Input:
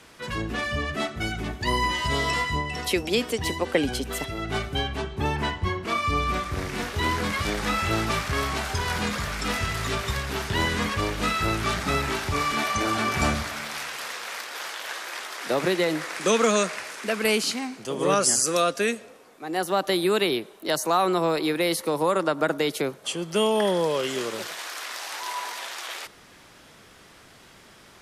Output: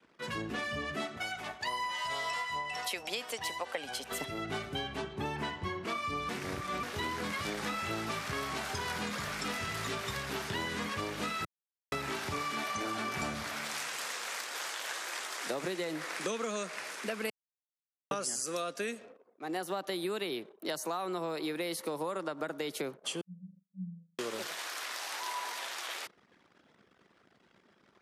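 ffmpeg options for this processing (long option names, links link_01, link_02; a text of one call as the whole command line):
ffmpeg -i in.wav -filter_complex "[0:a]asettb=1/sr,asplit=3[link_01][link_02][link_03];[link_01]atrim=end=1.174[link_04];[link_02]atrim=start=1.17:end=4.12,asetpts=PTS-STARTPTS,afade=type=in:duration=0.004:curve=qsin,afade=type=out:start_time=2.946:duration=0.004:curve=qsin,lowshelf=frequency=480:width_type=q:width=1.5:gain=-11.5[link_05];[link_03]atrim=start=4.116[link_06];[link_04][link_05]acrossfade=duration=0.004:curve1=hsin:curve2=qsin[link_07];[link_07][link_06]acrossfade=duration=0.004:curve1=qsin:curve2=hsin,asettb=1/sr,asplit=3[link_08][link_09][link_10];[link_08]atrim=end=13.644[link_11];[link_09]atrim=start=13.64:end=15.91,asetpts=PTS-STARTPTS,afade=type=in:duration=0.004:curve=qsin,afade=type=out:start_time=2.266:duration=0.004:curve=qsin,equalizer=frequency=7600:width=1.5:gain=5.5[link_12];[link_10]atrim=start=15.906[link_13];[link_11][link_12]acrossfade=duration=0.004:curve1=hsin:curve2=qsin[link_14];[link_14][link_13]acrossfade=duration=0.004:curve1=qsin:curve2=hsin,asettb=1/sr,asplit=3[link_15][link_16][link_17];[link_15]atrim=end=23.214[link_18];[link_16]atrim=start=23.21:end=24.19,asetpts=PTS-STARTPTS,afade=type=in:duration=0.004:curve=qsin,afade=type=out:start_time=0.976:duration=0.004:curve=qsin,asuperpass=centerf=180:order=20:qfactor=7.2[link_19];[link_17]atrim=start=24.186[link_20];[link_18][link_19]acrossfade=duration=0.004:curve1=hsin:curve2=qsin[link_21];[link_21][link_20]acrossfade=duration=0.004:curve1=qsin:curve2=hsin,asplit=7[link_22][link_23][link_24][link_25][link_26][link_27][link_28];[link_22]atrim=end=6.292[link_29];[link_23]atrim=start=6.288:end=6.832,asetpts=PTS-STARTPTS,areverse[link_30];[link_24]atrim=start=6.828:end=11.45,asetpts=PTS-STARTPTS,afade=type=out:start_time=4.618:duration=0.004:curve=hsin[link_31];[link_25]atrim=start=11.45:end=11.92,asetpts=PTS-STARTPTS,volume=0[link_32];[link_26]atrim=start=11.92:end=17.3,asetpts=PTS-STARTPTS,afade=type=in:duration=0.004:curve=hsin,afade=type=out:start_time=5.376:duration=0.004:curve=hsin[link_33];[link_27]atrim=start=17.3:end=18.11,asetpts=PTS-STARTPTS,volume=0[link_34];[link_28]atrim=start=18.11,asetpts=PTS-STARTPTS,afade=type=in:duration=0.004:curve=hsin[link_35];[link_29][link_30]acrossfade=duration=0.004:curve1=hsin:curve2=hsin[link_36];[link_31][link_32][link_33][link_34][link_35]concat=n=5:v=0:a=1[link_37];[link_36][link_37]acrossfade=duration=0.004:curve1=hsin:curve2=hsin,anlmdn=0.0158,highpass=130,acompressor=threshold=-28dB:ratio=6,volume=-4.5dB" out.wav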